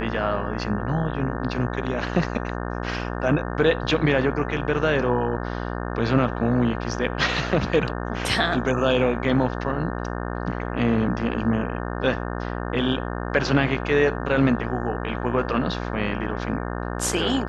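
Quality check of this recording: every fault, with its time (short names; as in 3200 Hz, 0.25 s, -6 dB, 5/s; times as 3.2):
buzz 60 Hz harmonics 30 -29 dBFS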